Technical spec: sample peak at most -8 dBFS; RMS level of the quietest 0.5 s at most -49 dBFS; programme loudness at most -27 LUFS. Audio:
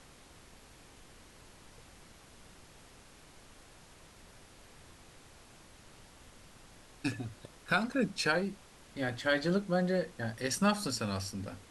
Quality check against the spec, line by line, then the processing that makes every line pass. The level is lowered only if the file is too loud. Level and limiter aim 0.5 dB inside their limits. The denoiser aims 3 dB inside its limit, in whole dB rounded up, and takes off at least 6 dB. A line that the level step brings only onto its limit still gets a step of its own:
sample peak -14.0 dBFS: pass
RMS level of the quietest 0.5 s -56 dBFS: pass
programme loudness -33.0 LUFS: pass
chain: none needed

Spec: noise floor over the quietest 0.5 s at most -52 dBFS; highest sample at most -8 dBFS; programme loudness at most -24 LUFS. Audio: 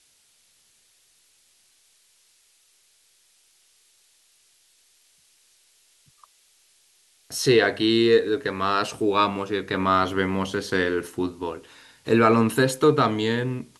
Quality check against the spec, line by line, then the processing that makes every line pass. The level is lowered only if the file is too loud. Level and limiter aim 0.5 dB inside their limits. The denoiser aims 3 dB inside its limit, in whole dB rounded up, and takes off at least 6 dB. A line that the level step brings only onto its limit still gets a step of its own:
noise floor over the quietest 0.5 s -62 dBFS: pass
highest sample -4.5 dBFS: fail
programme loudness -22.0 LUFS: fail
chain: trim -2.5 dB; peak limiter -8.5 dBFS

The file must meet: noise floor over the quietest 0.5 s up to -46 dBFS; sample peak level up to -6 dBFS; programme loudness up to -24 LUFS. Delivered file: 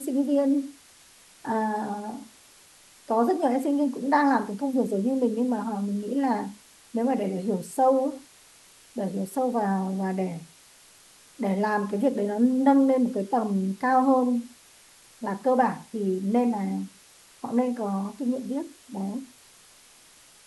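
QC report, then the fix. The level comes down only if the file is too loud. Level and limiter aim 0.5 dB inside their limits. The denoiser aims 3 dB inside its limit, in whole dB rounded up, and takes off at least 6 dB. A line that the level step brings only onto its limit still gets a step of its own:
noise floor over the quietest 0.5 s -54 dBFS: pass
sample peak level -8.0 dBFS: pass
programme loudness -26.0 LUFS: pass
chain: none needed

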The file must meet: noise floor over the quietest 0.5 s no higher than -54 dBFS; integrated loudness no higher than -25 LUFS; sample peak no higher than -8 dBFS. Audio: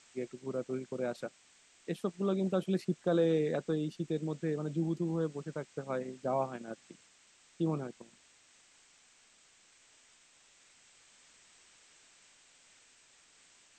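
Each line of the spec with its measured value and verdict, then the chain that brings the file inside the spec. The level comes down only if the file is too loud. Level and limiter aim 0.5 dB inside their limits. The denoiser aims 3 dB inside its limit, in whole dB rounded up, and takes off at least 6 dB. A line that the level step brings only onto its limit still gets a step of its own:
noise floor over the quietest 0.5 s -64 dBFS: pass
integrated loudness -35.0 LUFS: pass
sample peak -18.0 dBFS: pass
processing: none needed

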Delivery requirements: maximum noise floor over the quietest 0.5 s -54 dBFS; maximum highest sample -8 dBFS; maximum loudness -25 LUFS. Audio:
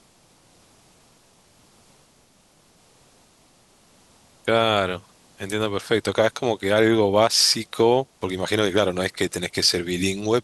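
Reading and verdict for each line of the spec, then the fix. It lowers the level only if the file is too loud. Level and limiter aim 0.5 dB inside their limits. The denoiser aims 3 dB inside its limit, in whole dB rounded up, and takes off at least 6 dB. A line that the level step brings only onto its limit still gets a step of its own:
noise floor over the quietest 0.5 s -58 dBFS: pass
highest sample -4.0 dBFS: fail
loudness -21.0 LUFS: fail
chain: trim -4.5 dB

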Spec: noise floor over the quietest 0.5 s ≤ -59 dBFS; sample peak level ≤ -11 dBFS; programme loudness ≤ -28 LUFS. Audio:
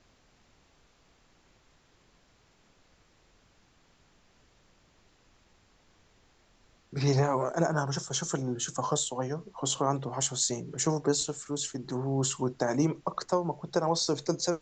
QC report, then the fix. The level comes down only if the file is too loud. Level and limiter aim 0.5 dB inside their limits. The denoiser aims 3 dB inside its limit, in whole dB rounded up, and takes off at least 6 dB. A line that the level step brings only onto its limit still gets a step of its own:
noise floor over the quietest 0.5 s -65 dBFS: pass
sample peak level -13.0 dBFS: pass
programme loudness -30.0 LUFS: pass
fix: none needed

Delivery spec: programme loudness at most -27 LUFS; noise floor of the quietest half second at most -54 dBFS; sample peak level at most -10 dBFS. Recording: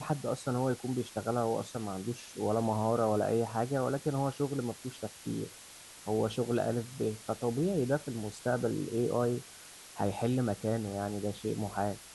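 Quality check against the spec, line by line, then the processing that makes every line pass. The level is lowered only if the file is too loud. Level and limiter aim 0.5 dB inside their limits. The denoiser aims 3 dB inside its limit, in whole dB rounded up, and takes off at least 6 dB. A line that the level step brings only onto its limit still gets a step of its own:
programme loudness -33.5 LUFS: pass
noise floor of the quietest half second -51 dBFS: fail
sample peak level -16.5 dBFS: pass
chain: noise reduction 6 dB, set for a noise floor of -51 dBFS

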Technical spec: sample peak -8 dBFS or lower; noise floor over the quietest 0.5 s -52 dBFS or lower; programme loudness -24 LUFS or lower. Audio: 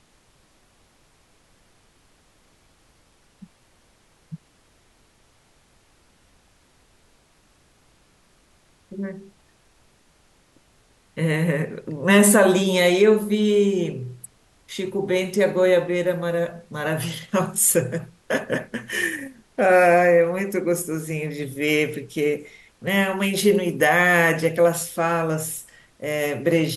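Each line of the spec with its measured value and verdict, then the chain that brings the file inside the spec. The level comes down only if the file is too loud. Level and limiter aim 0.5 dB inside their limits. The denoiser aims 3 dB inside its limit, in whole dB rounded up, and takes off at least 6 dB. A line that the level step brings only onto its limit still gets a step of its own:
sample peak -3.5 dBFS: fail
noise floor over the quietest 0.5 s -59 dBFS: pass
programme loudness -20.5 LUFS: fail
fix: trim -4 dB; peak limiter -8.5 dBFS

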